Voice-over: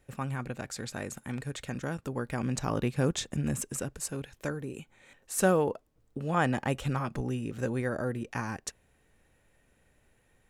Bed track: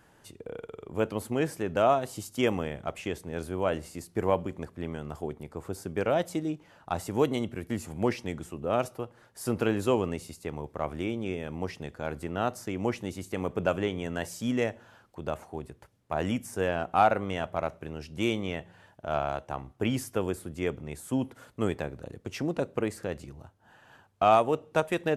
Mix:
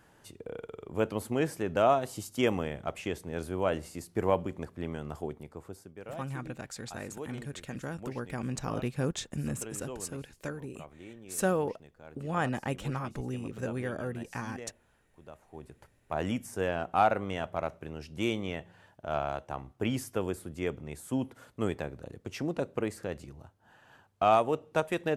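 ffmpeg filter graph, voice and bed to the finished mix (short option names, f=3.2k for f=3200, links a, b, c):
-filter_complex "[0:a]adelay=6000,volume=-3.5dB[a];[1:a]volume=13dB,afade=t=out:st=5.17:d=0.77:silence=0.16788,afade=t=in:st=15.42:d=0.42:silence=0.199526[b];[a][b]amix=inputs=2:normalize=0"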